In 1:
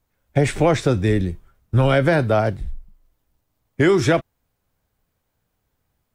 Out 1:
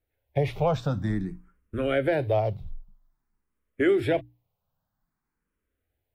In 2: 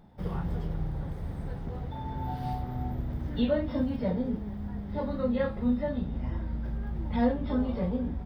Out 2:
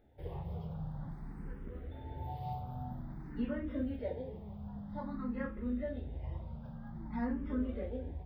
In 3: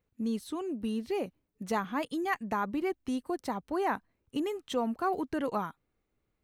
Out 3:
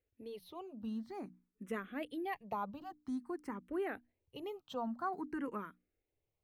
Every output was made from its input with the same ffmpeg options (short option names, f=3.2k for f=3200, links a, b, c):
-filter_complex "[0:a]equalizer=f=6.8k:w=0.84:g=-10,bandreject=f=60:t=h:w=6,bandreject=f=120:t=h:w=6,bandreject=f=180:t=h:w=6,bandreject=f=240:t=h:w=6,bandreject=f=300:t=h:w=6,asplit=2[a][b];[b]afreqshift=0.51[c];[a][c]amix=inputs=2:normalize=1,volume=-5dB"